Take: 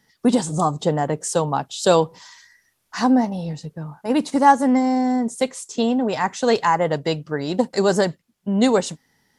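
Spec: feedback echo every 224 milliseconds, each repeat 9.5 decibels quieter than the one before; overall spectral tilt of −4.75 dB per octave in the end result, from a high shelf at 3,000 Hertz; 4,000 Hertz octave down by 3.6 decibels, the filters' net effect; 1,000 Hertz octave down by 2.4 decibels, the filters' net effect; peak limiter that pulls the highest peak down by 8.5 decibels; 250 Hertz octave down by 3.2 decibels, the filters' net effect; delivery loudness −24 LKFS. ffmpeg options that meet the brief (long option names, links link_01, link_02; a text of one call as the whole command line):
ffmpeg -i in.wav -af "equalizer=frequency=250:width_type=o:gain=-3.5,equalizer=frequency=1000:width_type=o:gain=-3,highshelf=frequency=3000:gain=5,equalizer=frequency=4000:width_type=o:gain=-8,alimiter=limit=-13dB:level=0:latency=1,aecho=1:1:224|448|672|896:0.335|0.111|0.0365|0.012,volume=0.5dB" out.wav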